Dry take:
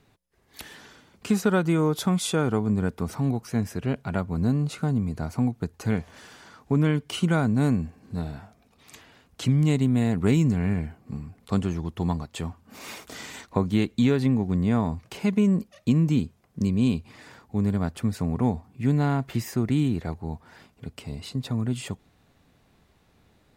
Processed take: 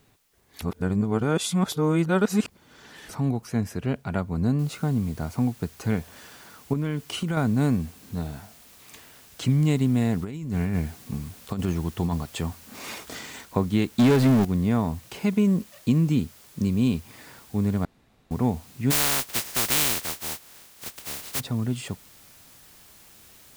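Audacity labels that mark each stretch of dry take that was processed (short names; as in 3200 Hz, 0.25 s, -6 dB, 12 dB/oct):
0.620000	3.090000	reverse
4.590000	4.590000	noise floor step -69 dB -52 dB
6.730000	7.370000	compressor, threshold -23 dBFS
10.230000	13.190000	negative-ratio compressor -25 dBFS, ratio -0.5
13.990000	14.450000	power-law curve exponent 0.5
17.850000	18.310000	room tone
18.900000	21.390000	spectral contrast lowered exponent 0.18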